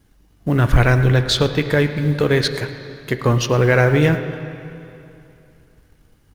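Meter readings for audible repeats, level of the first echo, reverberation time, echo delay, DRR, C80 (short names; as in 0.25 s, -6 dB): 1, -19.5 dB, 2.8 s, 0.109 s, 8.0 dB, 10.0 dB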